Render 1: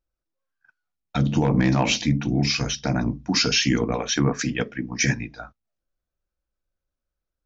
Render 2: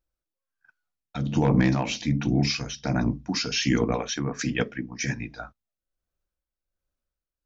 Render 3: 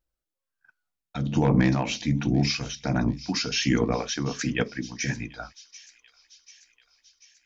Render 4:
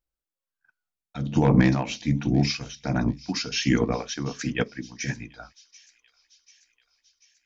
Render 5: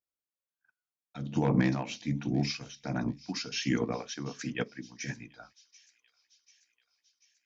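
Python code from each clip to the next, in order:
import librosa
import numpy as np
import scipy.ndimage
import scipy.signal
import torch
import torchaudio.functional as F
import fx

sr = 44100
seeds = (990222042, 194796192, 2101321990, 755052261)

y1 = x * (1.0 - 0.62 / 2.0 + 0.62 / 2.0 * np.cos(2.0 * np.pi * 1.3 * (np.arange(len(x)) / sr)))
y2 = fx.echo_wet_highpass(y1, sr, ms=739, feedback_pct=60, hz=3800.0, wet_db=-13.0)
y3 = fx.upward_expand(y2, sr, threshold_db=-34.0, expansion=1.5)
y3 = y3 * librosa.db_to_amplitude(3.5)
y4 = scipy.signal.sosfilt(scipy.signal.butter(2, 110.0, 'highpass', fs=sr, output='sos'), y3)
y4 = y4 * librosa.db_to_amplitude(-7.0)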